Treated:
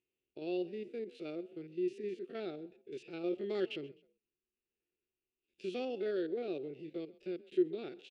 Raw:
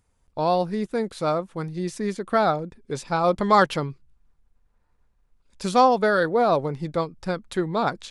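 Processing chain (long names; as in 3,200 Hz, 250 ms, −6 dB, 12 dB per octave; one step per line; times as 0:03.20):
spectrum averaged block by block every 50 ms
pair of resonant band-passes 1,000 Hz, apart 2.9 octaves
echo with shifted repeats 129 ms, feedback 33%, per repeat +34 Hz, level −21.5 dB
level −2 dB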